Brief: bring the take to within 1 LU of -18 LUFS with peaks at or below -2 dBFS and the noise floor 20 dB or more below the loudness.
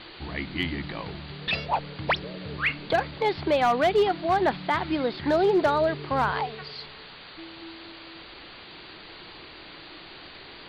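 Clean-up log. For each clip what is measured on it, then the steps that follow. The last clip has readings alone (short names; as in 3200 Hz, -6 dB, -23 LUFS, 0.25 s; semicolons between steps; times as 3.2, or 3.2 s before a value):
clipped 0.5%; flat tops at -15.5 dBFS; noise floor -45 dBFS; noise floor target -46 dBFS; loudness -26.0 LUFS; peak -15.5 dBFS; loudness target -18.0 LUFS
-> clip repair -15.5 dBFS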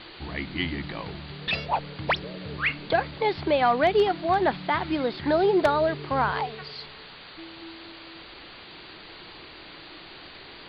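clipped 0.0%; noise floor -45 dBFS; noise floor target -46 dBFS
-> denoiser 6 dB, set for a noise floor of -45 dBFS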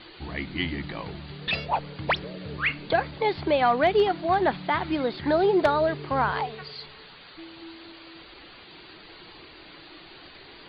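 noise floor -48 dBFS; loudness -25.5 LUFS; peak -6.5 dBFS; loudness target -18.0 LUFS
-> gain +7.5 dB; limiter -2 dBFS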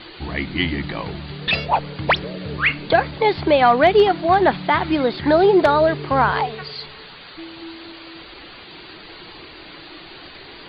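loudness -18.0 LUFS; peak -2.0 dBFS; noise floor -41 dBFS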